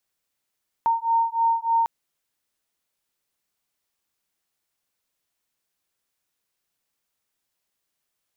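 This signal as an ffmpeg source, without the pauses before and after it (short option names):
-f lavfi -i "aevalsrc='0.0794*(sin(2*PI*916*t)+sin(2*PI*919.3*t))':d=1:s=44100"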